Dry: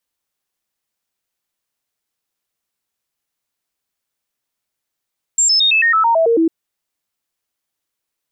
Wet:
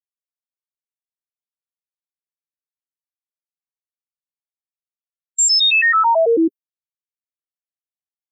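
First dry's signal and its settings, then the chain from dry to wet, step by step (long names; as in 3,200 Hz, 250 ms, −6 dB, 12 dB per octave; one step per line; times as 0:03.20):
stepped sweep 7,400 Hz down, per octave 2, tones 10, 0.11 s, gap 0.00 s −10 dBFS
spectral dynamics exaggerated over time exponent 3
noise gate with hold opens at −14 dBFS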